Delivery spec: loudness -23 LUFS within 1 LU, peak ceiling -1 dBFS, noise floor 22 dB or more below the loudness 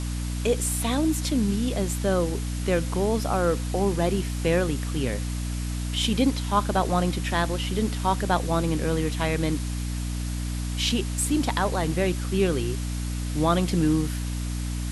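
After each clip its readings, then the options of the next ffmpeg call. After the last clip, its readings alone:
hum 60 Hz; harmonics up to 300 Hz; hum level -27 dBFS; noise floor -29 dBFS; noise floor target -48 dBFS; loudness -25.5 LUFS; peak -8.0 dBFS; loudness target -23.0 LUFS
-> -af "bandreject=f=60:t=h:w=4,bandreject=f=120:t=h:w=4,bandreject=f=180:t=h:w=4,bandreject=f=240:t=h:w=4,bandreject=f=300:t=h:w=4"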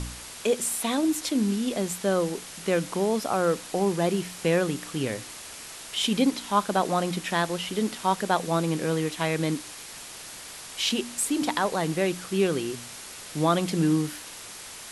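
hum none; noise floor -42 dBFS; noise floor target -49 dBFS
-> -af "afftdn=nr=7:nf=-42"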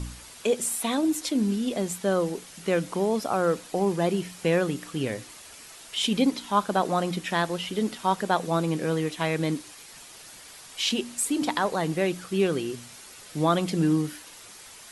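noise floor -47 dBFS; noise floor target -49 dBFS
-> -af "afftdn=nr=6:nf=-47"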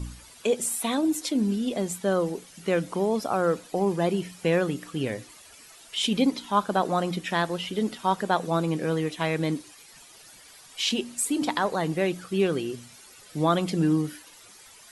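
noise floor -51 dBFS; loudness -26.5 LUFS; peak -9.0 dBFS; loudness target -23.0 LUFS
-> -af "volume=3.5dB"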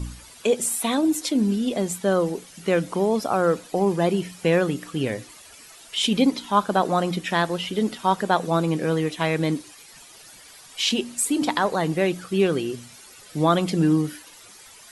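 loudness -23.0 LUFS; peak -5.5 dBFS; noise floor -47 dBFS

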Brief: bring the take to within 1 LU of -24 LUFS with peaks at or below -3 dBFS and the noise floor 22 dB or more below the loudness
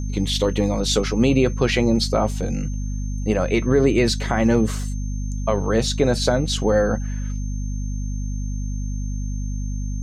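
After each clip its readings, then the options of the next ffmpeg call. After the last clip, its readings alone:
hum 50 Hz; harmonics up to 250 Hz; hum level -23 dBFS; steady tone 6300 Hz; tone level -43 dBFS; loudness -22.0 LUFS; peak -5.5 dBFS; loudness target -24.0 LUFS
-> -af "bandreject=f=50:t=h:w=4,bandreject=f=100:t=h:w=4,bandreject=f=150:t=h:w=4,bandreject=f=200:t=h:w=4,bandreject=f=250:t=h:w=4"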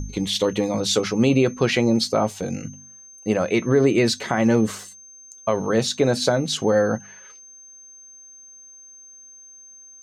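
hum none; steady tone 6300 Hz; tone level -43 dBFS
-> -af "bandreject=f=6.3k:w=30"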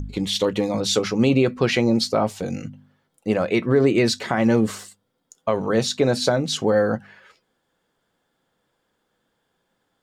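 steady tone none; loudness -21.0 LUFS; peak -6.5 dBFS; loudness target -24.0 LUFS
-> -af "volume=-3dB"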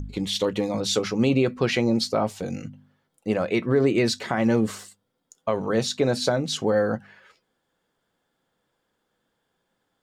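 loudness -24.0 LUFS; peak -9.5 dBFS; noise floor -76 dBFS

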